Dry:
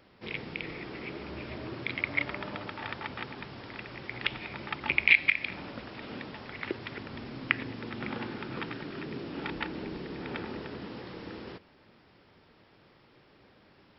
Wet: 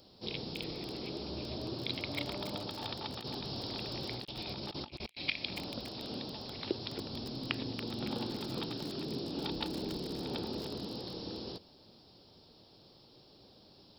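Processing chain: EQ curve 750 Hz 0 dB, 2000 Hz -17 dB, 4100 Hz +11 dB; 3.18–5.22 negative-ratio compressor -43 dBFS, ratio -0.5; lo-fi delay 0.282 s, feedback 55%, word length 6-bit, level -8.5 dB

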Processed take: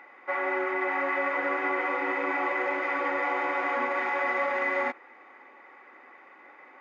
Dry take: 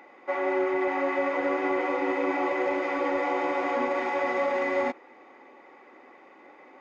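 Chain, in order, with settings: bell 1600 Hz +13 dB 1.8 oct; gain -7.5 dB

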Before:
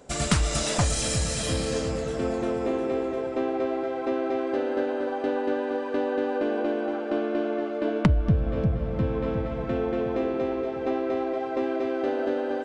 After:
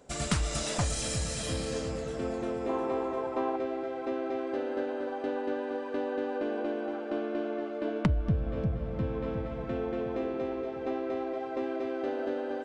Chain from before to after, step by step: 2.69–3.56 bell 970 Hz +13.5 dB 0.69 oct; gain -6 dB

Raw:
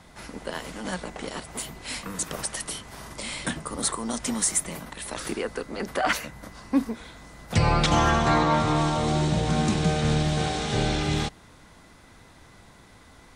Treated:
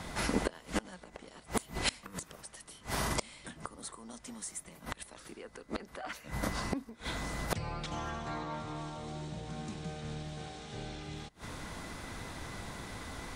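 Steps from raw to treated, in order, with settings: flipped gate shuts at -25 dBFS, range -26 dB; gain +8 dB

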